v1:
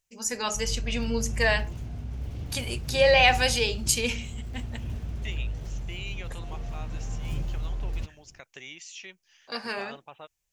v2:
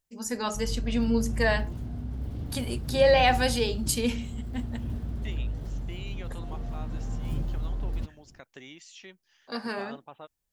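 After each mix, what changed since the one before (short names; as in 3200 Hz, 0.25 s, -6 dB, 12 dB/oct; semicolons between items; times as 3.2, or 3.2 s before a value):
master: add fifteen-band EQ 250 Hz +7 dB, 2500 Hz -8 dB, 6300 Hz -8 dB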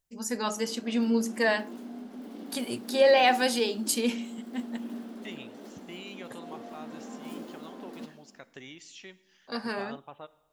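background: add brick-wall FIR high-pass 200 Hz; reverb: on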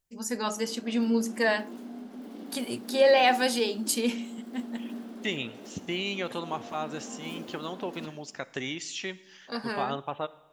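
second voice +12.0 dB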